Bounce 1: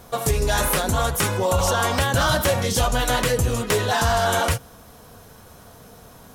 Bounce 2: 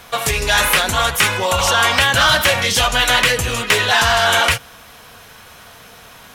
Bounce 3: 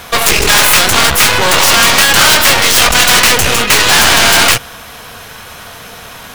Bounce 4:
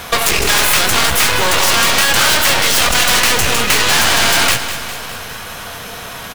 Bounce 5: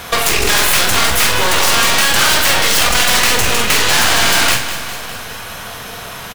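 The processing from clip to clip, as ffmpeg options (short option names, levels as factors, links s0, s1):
-filter_complex "[0:a]equalizer=f=2500:w=0.76:g=12,acrossover=split=660[s0][s1];[s1]acontrast=36[s2];[s0][s2]amix=inputs=2:normalize=0,volume=0.794"
-af "aeval=exprs='0.891*(cos(1*acos(clip(val(0)/0.891,-1,1)))-cos(1*PI/2))+0.355*(cos(6*acos(clip(val(0)/0.891,-1,1)))-cos(6*PI/2))':c=same,apsyclip=4.22,acrusher=bits=6:mode=log:mix=0:aa=0.000001,volume=0.794"
-filter_complex "[0:a]acompressor=threshold=0.251:ratio=6,asplit=2[s0][s1];[s1]aecho=0:1:203|406|609|812|1015|1218|1421:0.282|0.169|0.101|0.0609|0.0365|0.0219|0.0131[s2];[s0][s2]amix=inputs=2:normalize=0,volume=1.19"
-filter_complex "[0:a]asplit=2[s0][s1];[s1]adelay=46,volume=0.473[s2];[s0][s2]amix=inputs=2:normalize=0,volume=0.891"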